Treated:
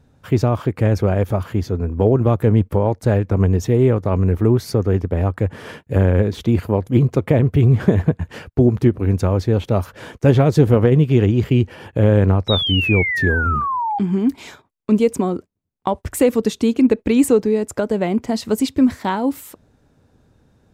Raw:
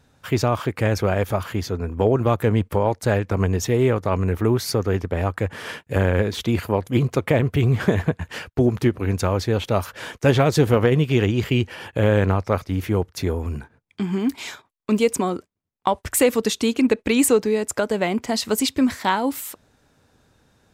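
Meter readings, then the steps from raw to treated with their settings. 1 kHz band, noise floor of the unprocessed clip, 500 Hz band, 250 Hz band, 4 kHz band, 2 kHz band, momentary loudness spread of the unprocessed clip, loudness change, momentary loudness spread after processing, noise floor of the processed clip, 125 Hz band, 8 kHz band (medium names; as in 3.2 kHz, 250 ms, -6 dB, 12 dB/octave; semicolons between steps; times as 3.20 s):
+1.0 dB, -63 dBFS, +2.5 dB, +4.5 dB, +3.0 dB, +2.5 dB, 9 LU, +4.0 dB, 8 LU, -59 dBFS, +5.5 dB, no reading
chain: tilt shelf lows +6 dB, about 720 Hz; painted sound fall, 12.48–13.99 s, 790–3900 Hz -21 dBFS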